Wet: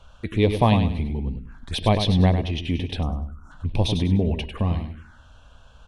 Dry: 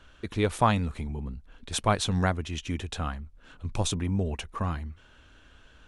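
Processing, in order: treble shelf 5.7 kHz -7.5 dB; feedback delay 99 ms, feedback 30%, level -8 dB; time-frequency box 3.02–3.51 s, 1.5–5.3 kHz -25 dB; de-hum 321.2 Hz, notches 18; touch-sensitive phaser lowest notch 290 Hz, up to 1.4 kHz, full sweep at -30.5 dBFS; trim +7.5 dB

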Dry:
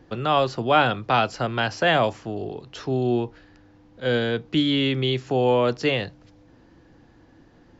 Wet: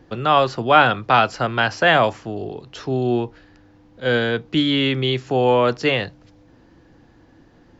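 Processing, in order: dynamic bell 1.4 kHz, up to +5 dB, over -32 dBFS, Q 0.77; trim +2 dB

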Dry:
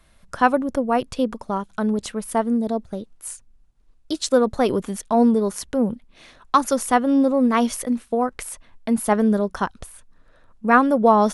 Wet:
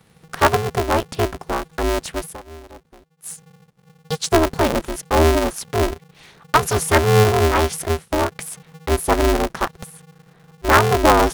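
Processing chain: 2.25–3.30 s: dip -19 dB, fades 0.12 s; 6.62–7.32 s: comb 4.6 ms, depth 97%; polarity switched at an audio rate 160 Hz; trim +1.5 dB

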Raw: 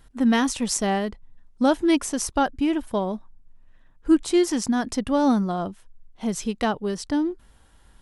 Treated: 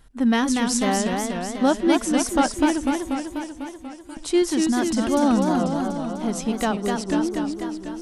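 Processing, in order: 2.93–4.17 s: differentiator; modulated delay 245 ms, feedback 67%, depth 182 cents, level -4 dB

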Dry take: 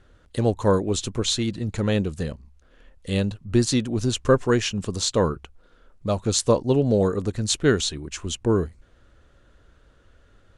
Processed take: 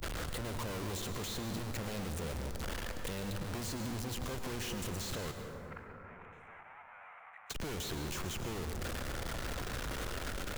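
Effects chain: one-bit comparator; 5.31–7.50 s: elliptic band-pass 730–2300 Hz, stop band 40 dB; gate -25 dBFS, range -42 dB; compression 12:1, threshold -45 dBFS, peak gain reduction 7 dB; peak limiter -51 dBFS, peak gain reduction 33 dB; plate-style reverb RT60 1.9 s, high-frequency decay 0.4×, pre-delay 90 ms, DRR 6 dB; three bands compressed up and down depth 70%; trim +11 dB

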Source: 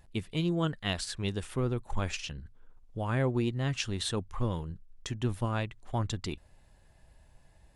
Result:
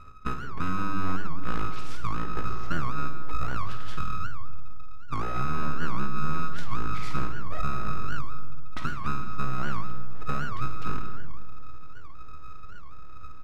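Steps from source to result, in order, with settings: high-pass 55 Hz 12 dB/octave; tilt EQ -3.5 dB/octave; hum notches 50/100/150/200 Hz; compression 10:1, threshold -32 dBFS, peak gain reduction 16 dB; ring modulator 1.1 kHz; full-wave rectifier; doubling 31 ms -9 dB; algorithmic reverb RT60 1.2 s, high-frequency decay 0.5×, pre-delay 25 ms, DRR 7 dB; speed mistake 78 rpm record played at 45 rpm; warped record 78 rpm, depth 250 cents; trim +8 dB

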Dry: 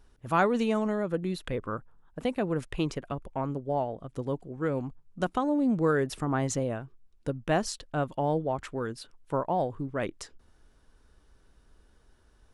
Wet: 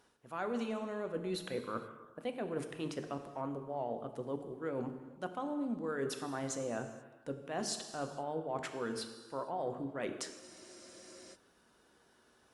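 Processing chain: high-pass 210 Hz 12 dB/octave; hum notches 50/100/150/200/250/300/350/400/450 Hz; reverse; compression 10:1, threshold -36 dBFS, peak gain reduction 17.5 dB; reverse; gated-style reverb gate 500 ms falling, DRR 6.5 dB; spectral freeze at 10.42 s, 0.93 s; trim +1 dB; Opus 48 kbps 48 kHz

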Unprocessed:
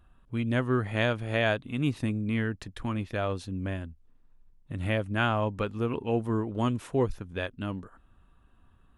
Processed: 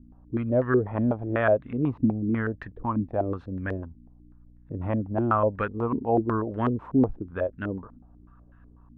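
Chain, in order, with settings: hum 60 Hz, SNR 24 dB; step-sequenced low-pass 8.1 Hz 260–1700 Hz

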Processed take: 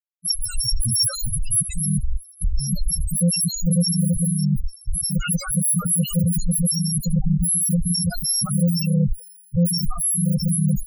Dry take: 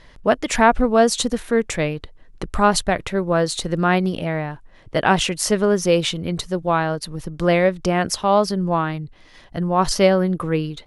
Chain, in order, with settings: bit-reversed sample order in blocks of 128 samples; gate with hold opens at -33 dBFS; treble shelf 10 kHz -3 dB; compression 10:1, threshold -20 dBFS, peak gain reduction 11 dB; waveshaping leveller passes 5; fuzz box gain 41 dB, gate -50 dBFS; on a send: thinning echo 84 ms, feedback 67%, high-pass 390 Hz, level -13.5 dB; on the sum: loudest bins only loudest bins 4

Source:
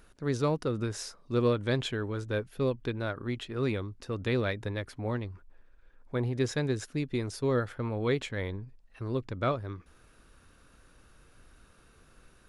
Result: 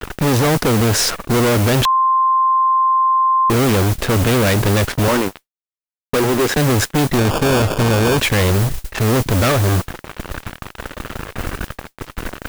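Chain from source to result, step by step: local Wiener filter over 9 samples; gate with hold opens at -50 dBFS; 5.08–6.57 s: three-band isolator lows -20 dB, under 220 Hz, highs -13 dB, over 2.7 kHz; compression 1.5:1, threshold -44 dBFS, peak gain reduction 8 dB; fuzz box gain 55 dB, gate -55 dBFS; modulation noise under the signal 14 dB; 1.85–3.50 s: bleep 1.05 kHz -11 dBFS; 7.18–8.18 s: sample-rate reducer 2 kHz, jitter 0%

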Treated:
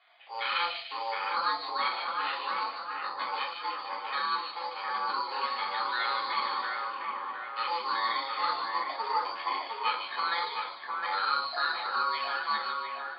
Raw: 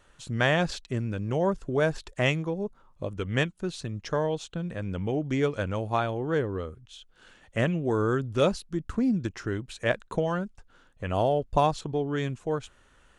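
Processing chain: peak limiter -19.5 dBFS, peak gain reduction 8.5 dB; ring modulator 680 Hz; Butterworth band-pass 3.1 kHz, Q 0.52; simulated room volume 260 m³, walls furnished, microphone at 3.3 m; careless resampling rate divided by 8×, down filtered, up hold; on a send: two-band feedback delay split 2.5 kHz, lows 710 ms, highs 148 ms, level -3.5 dB; on the sum: resampled via 11.025 kHz; trim +1 dB

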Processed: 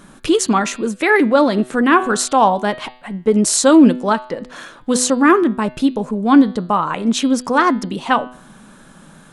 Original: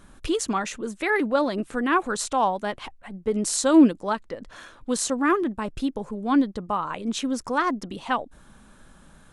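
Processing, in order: resonant low shelf 110 Hz -10.5 dB, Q 1.5; de-hum 125.1 Hz, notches 39; loudness maximiser +10.5 dB; trim -1 dB

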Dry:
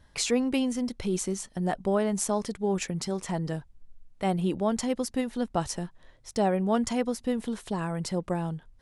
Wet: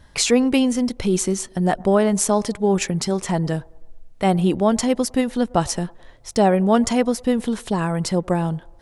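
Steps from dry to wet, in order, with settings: feedback echo behind a band-pass 107 ms, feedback 54%, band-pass 630 Hz, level -24 dB; trim +9 dB

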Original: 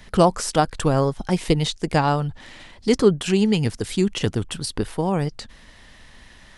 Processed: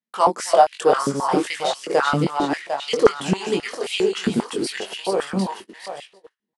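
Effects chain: backward echo that repeats 375 ms, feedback 58%, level -4 dB; in parallel at -9.5 dB: saturation -14.5 dBFS, distortion -12 dB; on the sum: gate -27 dBFS, range -45 dB; doubling 21 ms -4 dB; step-sequenced high-pass 7.5 Hz 220–2700 Hz; trim -6.5 dB

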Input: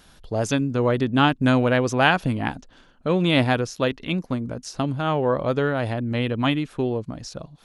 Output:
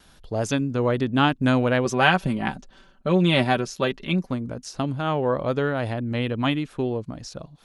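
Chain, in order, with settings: gate with hold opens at -47 dBFS; 1.85–4.31 s: comb 5.2 ms, depth 63%; trim -1.5 dB

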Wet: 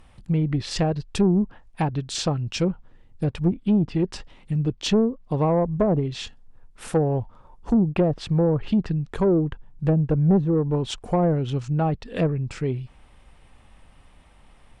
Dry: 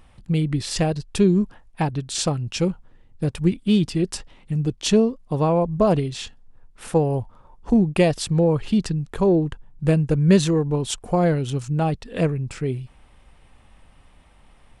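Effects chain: low-pass that closes with the level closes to 570 Hz, closed at -13 dBFS; saturation -11.5 dBFS, distortion -18 dB

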